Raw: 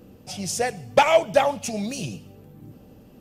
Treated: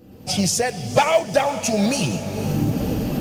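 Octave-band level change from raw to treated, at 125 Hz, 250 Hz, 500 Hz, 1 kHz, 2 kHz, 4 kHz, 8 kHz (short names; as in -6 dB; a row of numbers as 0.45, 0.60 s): +12.5, +10.5, +1.0, +0.5, +1.5, +5.5, +7.5 dB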